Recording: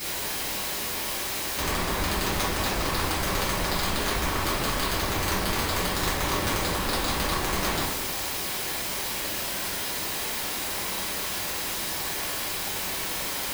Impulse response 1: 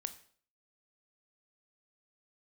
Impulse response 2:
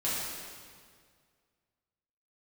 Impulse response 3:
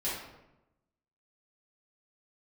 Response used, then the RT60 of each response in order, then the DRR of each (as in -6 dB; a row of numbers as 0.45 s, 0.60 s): 3; 0.50 s, 1.9 s, 0.95 s; 10.0 dB, -9.5 dB, -10.5 dB